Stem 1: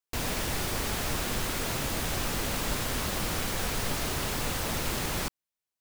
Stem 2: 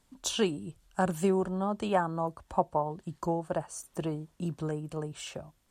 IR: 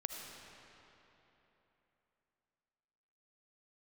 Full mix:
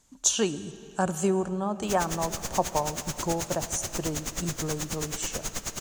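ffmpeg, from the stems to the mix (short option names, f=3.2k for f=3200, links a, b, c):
-filter_complex "[0:a]aeval=exprs='val(0)*pow(10,-27*(0.5-0.5*cos(2*PI*9.3*n/s))/20)':c=same,adelay=1700,volume=-4.5dB,asplit=2[a][b];[b]volume=-3.5dB[c];[1:a]volume=-1dB,asplit=2[d][e];[e]volume=-8dB[f];[2:a]atrim=start_sample=2205[g];[c][f]amix=inputs=2:normalize=0[h];[h][g]afir=irnorm=-1:irlink=0[i];[a][d][i]amix=inputs=3:normalize=0,equalizer=f=6.6k:w=2.6:g=14"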